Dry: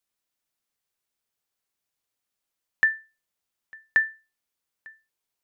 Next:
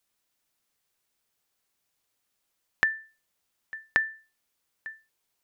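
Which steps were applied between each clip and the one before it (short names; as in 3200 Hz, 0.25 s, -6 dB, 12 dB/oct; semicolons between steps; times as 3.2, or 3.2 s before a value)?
compressor, threshold -28 dBFS, peak gain reduction 11.5 dB; gain +6 dB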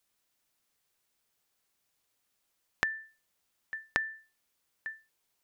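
compressor, threshold -26 dBFS, peak gain reduction 8 dB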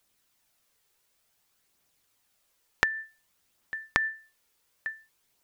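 phaser 0.55 Hz, delay 2.4 ms, feedback 30%; gain +5.5 dB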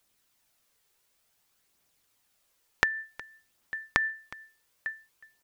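echo 0.365 s -20 dB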